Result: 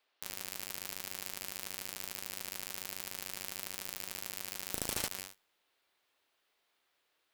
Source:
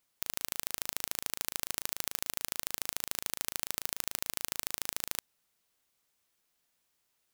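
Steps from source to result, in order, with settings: spectral replace 4.76–5.06 s, 600–8900 Hz both; reverse; compression 16:1, threshold -44 dBFS, peak gain reduction 18 dB; reverse; feedback comb 95 Hz, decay 1 s, harmonics all, mix 60%; band noise 310–4200 Hz -80 dBFS; in parallel at -5 dB: fuzz box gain 61 dB, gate -57 dBFS; on the sum: loudspeaker Doppler distortion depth 0.19 ms

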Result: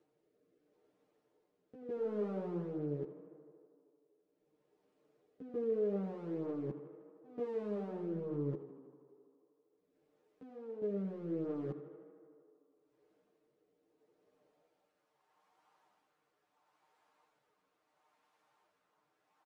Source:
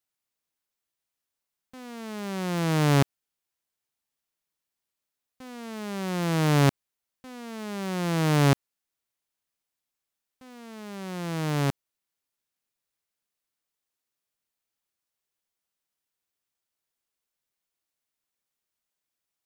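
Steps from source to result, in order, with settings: gate with hold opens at -36 dBFS; bass shelf 420 Hz +10.5 dB; comb 6.6 ms, depth 65%; upward compressor, threshold -32 dBFS; peak limiter -18.5 dBFS, peak gain reduction 17.5 dB; reverse; compression, threshold -28 dBFS, peak gain reduction 6 dB; reverse; rotary cabinet horn 0.75 Hz; band-pass sweep 430 Hz -> 910 Hz, 14.29–14.99 s; saturation -30 dBFS, distortion -27 dB; on a send: tape echo 79 ms, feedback 85%, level -11.5 dB, low-pass 3.8 kHz; on the sum: three-phase chorus; trim +7.5 dB

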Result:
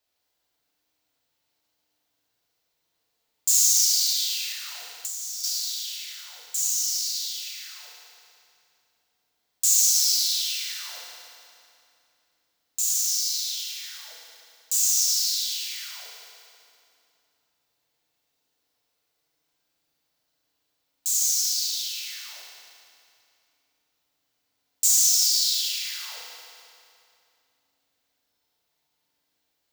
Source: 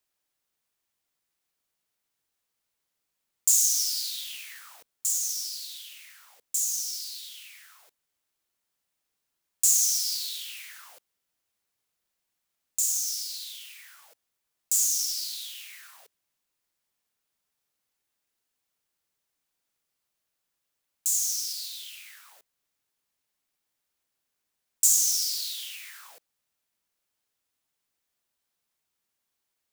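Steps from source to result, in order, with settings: fifteen-band graphic EQ 630 Hz +6 dB, 4 kHz +5 dB, 10 kHz -6 dB; FDN reverb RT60 2.6 s, low-frequency decay 1.3×, high-frequency decay 0.85×, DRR -4 dB; 4.51–5.44 s: compression 10:1, threshold -30 dBFS, peak gain reduction 9 dB

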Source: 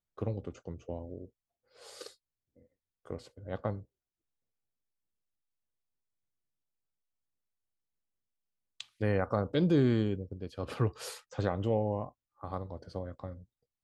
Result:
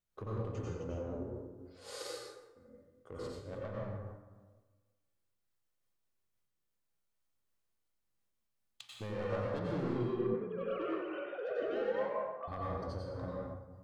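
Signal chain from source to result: 9.96–12.48 s: formants replaced by sine waves; saturation -32 dBFS, distortion -6 dB; compression, threshold -40 dBFS, peak gain reduction 6.5 dB; plate-style reverb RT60 1.4 s, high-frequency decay 0.5×, pre-delay 80 ms, DRR -4.5 dB; harmonic-percussive split harmonic +4 dB; random flutter of the level, depth 55%

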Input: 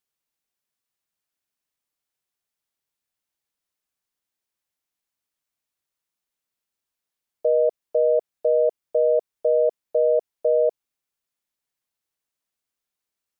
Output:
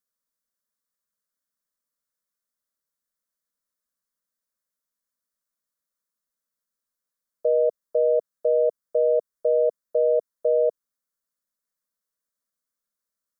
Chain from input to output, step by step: static phaser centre 530 Hz, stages 8

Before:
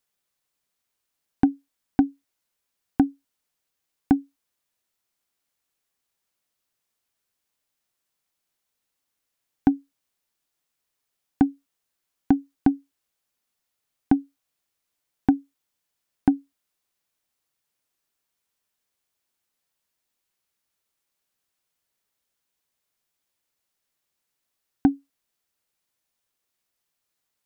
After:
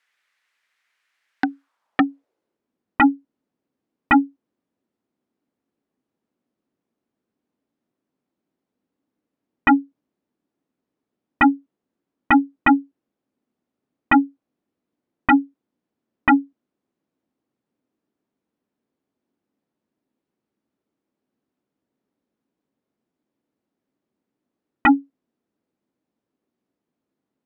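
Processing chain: band-pass sweep 1.9 kHz -> 260 Hz, 1.38–2.66 s; sine folder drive 16 dB, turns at -9 dBFS

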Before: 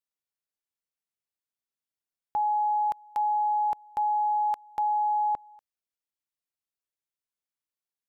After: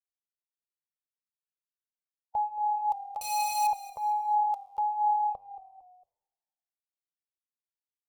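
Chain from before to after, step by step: expander on every frequency bin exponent 1.5; peaking EQ 310 Hz +5.5 dB 3 oct; transient shaper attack +4 dB, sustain -7 dB; peak limiter -21 dBFS, peak gain reduction 5 dB; feedback comb 99 Hz, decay 1.4 s, harmonics all, mix 60%; 3.21–3.67 s: Schmitt trigger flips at -40.5 dBFS; static phaser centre 690 Hz, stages 4; frequency-shifting echo 227 ms, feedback 39%, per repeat -37 Hz, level -15.5 dB; Shepard-style flanger falling 1.4 Hz; trim +9 dB

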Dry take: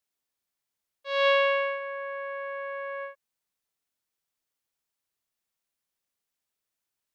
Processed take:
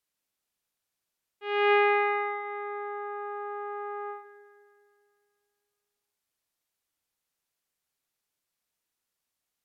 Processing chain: speed mistake 45 rpm record played at 33 rpm; echo whose repeats swap between lows and highs 105 ms, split 860 Hz, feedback 73%, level -10.5 dB

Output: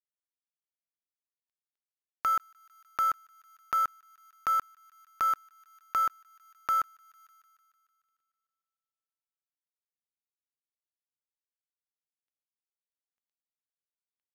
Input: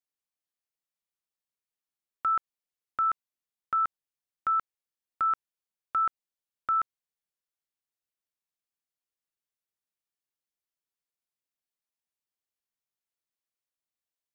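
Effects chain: median filter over 41 samples; on a send: feedback echo behind a high-pass 150 ms, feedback 64%, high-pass 2.1 kHz, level -23 dB; on the sum: tape noise reduction on one side only encoder only; trim +8 dB

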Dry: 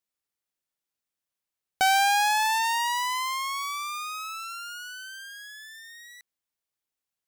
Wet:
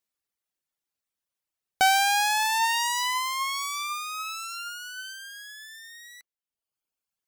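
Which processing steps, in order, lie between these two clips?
reverb removal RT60 1.1 s; 2.52–5.13 s: sweeping bell 1.3 Hz 530–8000 Hz +6 dB; trim +2 dB

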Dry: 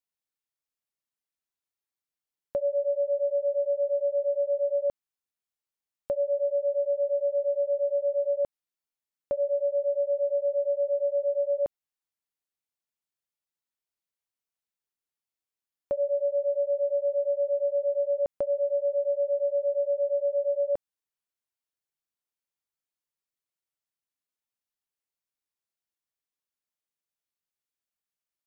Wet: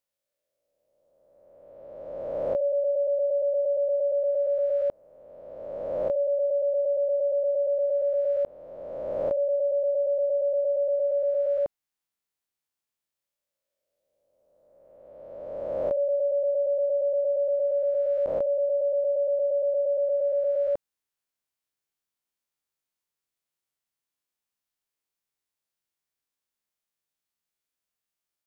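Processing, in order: reverse spectral sustain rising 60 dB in 2.03 s

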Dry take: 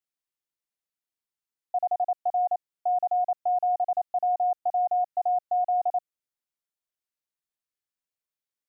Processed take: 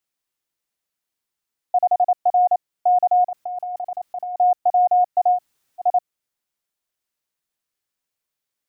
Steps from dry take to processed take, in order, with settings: 3.27–4.37 s: compressor with a negative ratio -36 dBFS, ratio -1; 5.36–5.83 s: room tone, crossfade 0.10 s; trim +8.5 dB

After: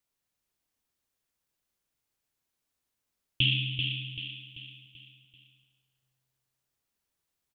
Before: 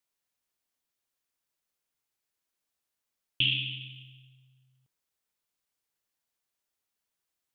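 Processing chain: bass shelf 270 Hz +8.5 dB; on a send: feedback delay 387 ms, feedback 45%, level -6 dB

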